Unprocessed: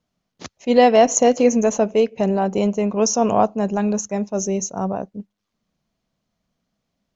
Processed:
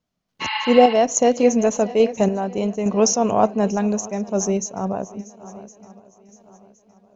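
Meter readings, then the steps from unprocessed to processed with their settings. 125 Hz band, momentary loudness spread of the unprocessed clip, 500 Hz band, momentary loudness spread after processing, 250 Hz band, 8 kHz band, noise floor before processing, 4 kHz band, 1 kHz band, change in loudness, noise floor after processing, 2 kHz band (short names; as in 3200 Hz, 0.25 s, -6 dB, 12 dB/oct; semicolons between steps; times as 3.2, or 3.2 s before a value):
-0.5 dB, 12 LU, -0.5 dB, 12 LU, -0.5 dB, n/a, -78 dBFS, +2.0 dB, -1.0 dB, -1.0 dB, -76 dBFS, +1.0 dB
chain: swung echo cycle 1.064 s, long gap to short 1.5:1, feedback 33%, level -19 dB; spectral repair 0.44–0.91, 830–5200 Hz after; random-step tremolo; gain +2.5 dB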